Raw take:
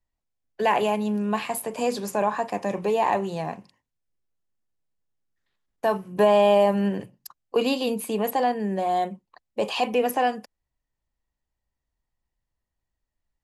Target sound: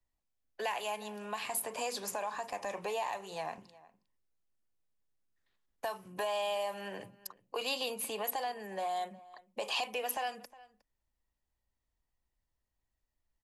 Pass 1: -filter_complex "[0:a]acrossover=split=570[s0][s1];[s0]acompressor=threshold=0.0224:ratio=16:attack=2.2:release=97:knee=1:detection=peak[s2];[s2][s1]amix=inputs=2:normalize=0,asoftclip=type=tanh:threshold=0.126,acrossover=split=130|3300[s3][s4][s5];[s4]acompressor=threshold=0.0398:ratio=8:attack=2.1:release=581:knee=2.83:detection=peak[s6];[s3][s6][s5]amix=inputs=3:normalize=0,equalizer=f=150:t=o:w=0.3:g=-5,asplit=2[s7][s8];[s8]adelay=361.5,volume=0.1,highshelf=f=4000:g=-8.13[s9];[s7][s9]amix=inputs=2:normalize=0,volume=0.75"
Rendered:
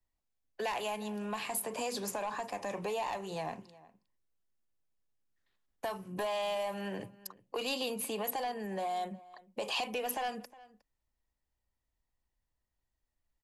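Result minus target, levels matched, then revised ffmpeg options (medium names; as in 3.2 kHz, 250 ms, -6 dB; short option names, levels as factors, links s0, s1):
saturation: distortion +19 dB; compression: peak gain reduction -9.5 dB
-filter_complex "[0:a]acrossover=split=570[s0][s1];[s0]acompressor=threshold=0.00708:ratio=16:attack=2.2:release=97:knee=1:detection=peak[s2];[s2][s1]amix=inputs=2:normalize=0,asoftclip=type=tanh:threshold=0.422,acrossover=split=130|3300[s3][s4][s5];[s4]acompressor=threshold=0.0398:ratio=8:attack=2.1:release=581:knee=2.83:detection=peak[s6];[s3][s6][s5]amix=inputs=3:normalize=0,equalizer=f=150:t=o:w=0.3:g=-5,asplit=2[s7][s8];[s8]adelay=361.5,volume=0.1,highshelf=f=4000:g=-8.13[s9];[s7][s9]amix=inputs=2:normalize=0,volume=0.75"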